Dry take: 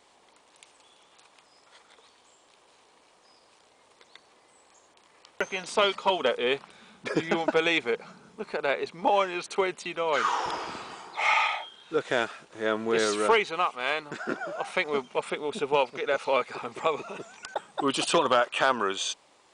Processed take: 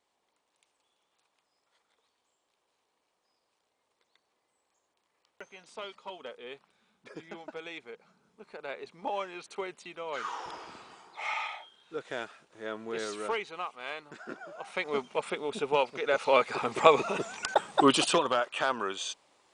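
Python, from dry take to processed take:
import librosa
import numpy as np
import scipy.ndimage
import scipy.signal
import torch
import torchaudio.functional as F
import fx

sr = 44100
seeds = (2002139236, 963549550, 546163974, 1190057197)

y = fx.gain(x, sr, db=fx.line((7.96, -18.0), (8.98, -10.5), (14.57, -10.5), (14.97, -2.5), (15.93, -2.5), (16.88, 7.0), (17.79, 7.0), (18.28, -5.5)))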